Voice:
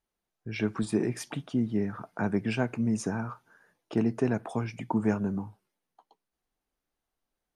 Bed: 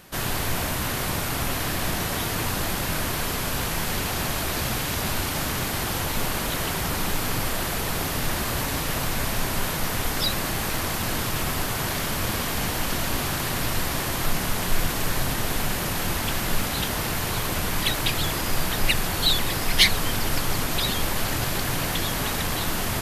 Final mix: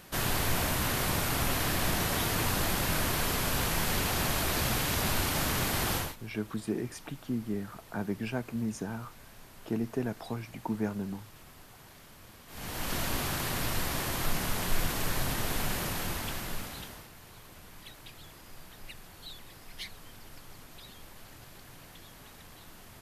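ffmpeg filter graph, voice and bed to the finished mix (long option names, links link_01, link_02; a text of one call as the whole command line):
ffmpeg -i stem1.wav -i stem2.wav -filter_complex "[0:a]adelay=5750,volume=-5.5dB[link_01];[1:a]volume=17.5dB,afade=type=out:start_time=5.94:duration=0.22:silence=0.0668344,afade=type=in:start_time=12.47:duration=0.5:silence=0.0944061,afade=type=out:start_time=15.76:duration=1.33:silence=0.112202[link_02];[link_01][link_02]amix=inputs=2:normalize=0" out.wav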